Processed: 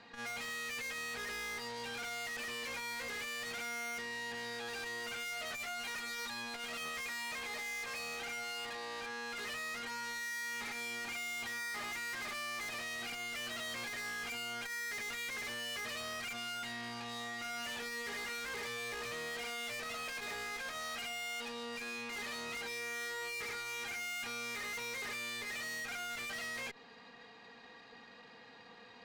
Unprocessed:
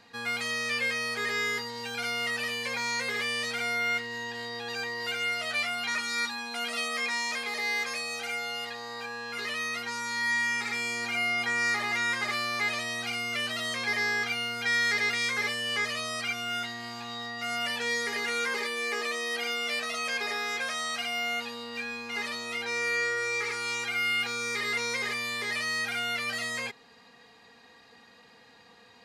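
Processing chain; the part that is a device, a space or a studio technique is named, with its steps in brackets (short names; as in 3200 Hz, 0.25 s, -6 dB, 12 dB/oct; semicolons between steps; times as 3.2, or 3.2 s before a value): valve radio (BPF 120–4200 Hz; tube stage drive 43 dB, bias 0.55; core saturation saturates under 150 Hz); gain +3 dB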